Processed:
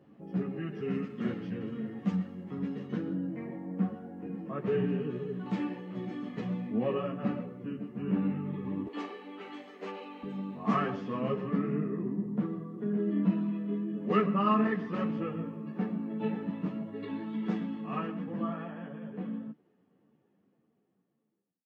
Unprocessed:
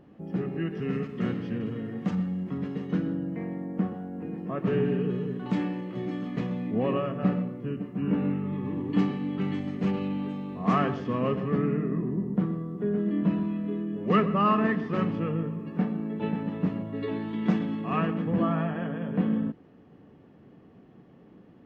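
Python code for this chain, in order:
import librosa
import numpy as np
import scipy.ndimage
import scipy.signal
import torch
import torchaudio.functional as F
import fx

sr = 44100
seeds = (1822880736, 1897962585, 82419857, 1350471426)

y = fx.fade_out_tail(x, sr, length_s=5.46)
y = fx.highpass(y, sr, hz=fx.steps((0.0, 97.0), (8.87, 380.0), (10.23, 120.0)), slope=24)
y = fx.ensemble(y, sr)
y = y * 10.0 ** (-1.5 / 20.0)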